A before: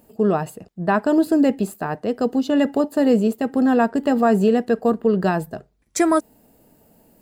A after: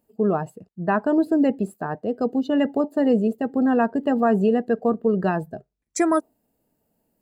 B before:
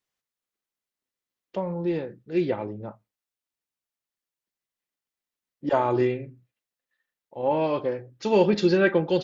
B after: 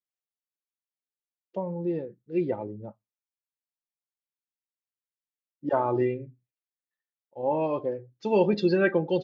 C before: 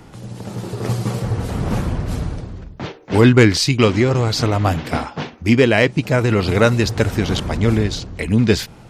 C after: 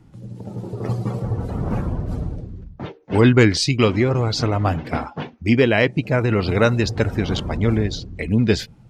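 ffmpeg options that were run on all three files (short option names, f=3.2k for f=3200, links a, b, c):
-af "afftdn=nr=14:nf=-32,volume=-2.5dB"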